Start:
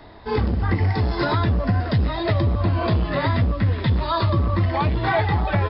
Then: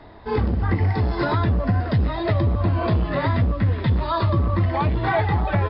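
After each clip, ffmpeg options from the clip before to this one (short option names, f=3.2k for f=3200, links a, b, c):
-af "lowpass=f=2.7k:p=1"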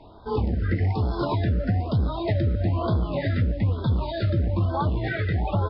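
-af "afftfilt=real='re*(1-between(b*sr/1024,880*pow(2300/880,0.5+0.5*sin(2*PI*1.1*pts/sr))/1.41,880*pow(2300/880,0.5+0.5*sin(2*PI*1.1*pts/sr))*1.41))':imag='im*(1-between(b*sr/1024,880*pow(2300/880,0.5+0.5*sin(2*PI*1.1*pts/sr))/1.41,880*pow(2300/880,0.5+0.5*sin(2*PI*1.1*pts/sr))*1.41))':win_size=1024:overlap=0.75,volume=-3dB"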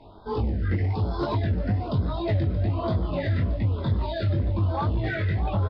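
-af "flanger=delay=18:depth=4:speed=2.2,aeval=exprs='0.188*(cos(1*acos(clip(val(0)/0.188,-1,1)))-cos(1*PI/2))+0.0119*(cos(5*acos(clip(val(0)/0.188,-1,1)))-cos(5*PI/2))':c=same,aecho=1:1:627:0.168"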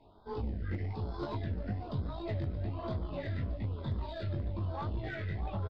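-filter_complex "[0:a]aeval=exprs='0.224*(cos(1*acos(clip(val(0)/0.224,-1,1)))-cos(1*PI/2))+0.0251*(cos(3*acos(clip(val(0)/0.224,-1,1)))-cos(3*PI/2))+0.0141*(cos(4*acos(clip(val(0)/0.224,-1,1)))-cos(4*PI/2))+0.0158*(cos(6*acos(clip(val(0)/0.224,-1,1)))-cos(6*PI/2))':c=same,volume=15.5dB,asoftclip=hard,volume=-15.5dB,asplit=2[a][b];[b]adelay=14,volume=-13dB[c];[a][c]amix=inputs=2:normalize=0,volume=-8.5dB"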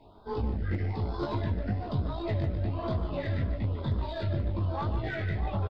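-filter_complex "[0:a]asplit=2[a][b];[b]adelay=150,highpass=300,lowpass=3.4k,asoftclip=type=hard:threshold=-32.5dB,volume=-9dB[c];[a][c]amix=inputs=2:normalize=0,volume=5.5dB"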